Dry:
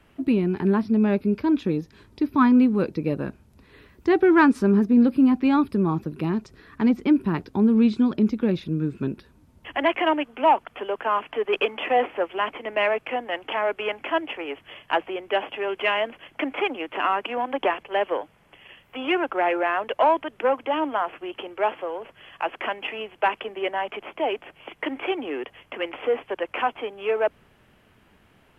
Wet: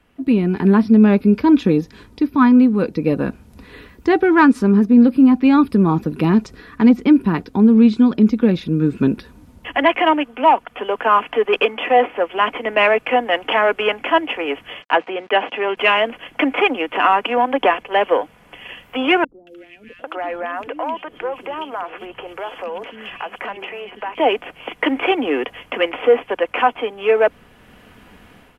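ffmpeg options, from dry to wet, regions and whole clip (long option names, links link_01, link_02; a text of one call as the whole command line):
ffmpeg -i in.wav -filter_complex "[0:a]asettb=1/sr,asplit=3[link_01][link_02][link_03];[link_01]atrim=end=14.824[link_04];[link_02]atrim=start=14.82:end=15.77,asetpts=PTS-STARTPTS,afade=type=in:duration=0.004:curve=qsin,afade=type=out:start_time=0.946:duration=0.004:curve=qsin,aemphasis=mode=production:type=50kf,aeval=exprs='val(0)*gte(abs(val(0)),0.00422)':channel_layout=same,highpass=130,lowpass=2800[link_05];[link_03]atrim=start=15.766[link_06];[link_04][link_05]acrossfade=duration=0.004:curve1=hsin:curve2=qsin[link_07];[link_07][link_06]acrossfade=duration=0.004:curve1=qsin:curve2=hsin,asettb=1/sr,asplit=3[link_08][link_09][link_10];[link_08]atrim=end=19.244[link_11];[link_09]atrim=start=19.24:end=24.18,asetpts=PTS-STARTPTS,afade=type=in:duration=0.004:curve=qsin,afade=type=out:start_time=4.936:duration=0.004:curve=qsin,acompressor=threshold=-39dB:ratio=3:attack=3.2:release=140:knee=1:detection=peak,acrossover=split=320|2800[link_12][link_13][link_14];[link_14]adelay=230[link_15];[link_13]adelay=800[link_16];[link_12][link_16][link_15]amix=inputs=3:normalize=0,atrim=end_sample=217854[link_17];[link_10]atrim=start=24.176[link_18];[link_11][link_17]acrossfade=duration=0.004:curve1=hsin:curve2=qsin[link_19];[link_19][link_18]acrossfade=duration=0.004:curve1=qsin:curve2=hsin,aecho=1:1:4.1:0.3,dynaudnorm=framelen=120:gausssize=5:maxgain=14dB,volume=-2dB" out.wav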